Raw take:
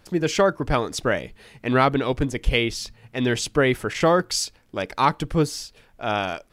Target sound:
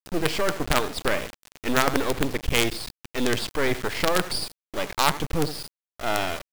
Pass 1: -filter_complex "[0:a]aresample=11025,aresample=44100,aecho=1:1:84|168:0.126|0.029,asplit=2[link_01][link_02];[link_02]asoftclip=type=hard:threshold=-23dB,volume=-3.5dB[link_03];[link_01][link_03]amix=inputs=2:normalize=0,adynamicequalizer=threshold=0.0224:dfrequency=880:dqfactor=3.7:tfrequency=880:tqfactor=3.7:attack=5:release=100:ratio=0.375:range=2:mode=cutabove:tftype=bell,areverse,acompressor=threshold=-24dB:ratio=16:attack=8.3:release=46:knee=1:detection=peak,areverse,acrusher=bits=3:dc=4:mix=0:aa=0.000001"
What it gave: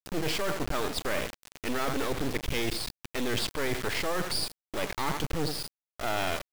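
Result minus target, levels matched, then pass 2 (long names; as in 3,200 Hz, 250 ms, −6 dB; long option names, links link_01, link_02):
downward compressor: peak gain reduction +7 dB
-filter_complex "[0:a]aresample=11025,aresample=44100,aecho=1:1:84|168:0.126|0.029,asplit=2[link_01][link_02];[link_02]asoftclip=type=hard:threshold=-23dB,volume=-3.5dB[link_03];[link_01][link_03]amix=inputs=2:normalize=0,adynamicequalizer=threshold=0.0224:dfrequency=880:dqfactor=3.7:tfrequency=880:tqfactor=3.7:attack=5:release=100:ratio=0.375:range=2:mode=cutabove:tftype=bell,areverse,acompressor=threshold=-16.5dB:ratio=16:attack=8.3:release=46:knee=1:detection=peak,areverse,acrusher=bits=3:dc=4:mix=0:aa=0.000001"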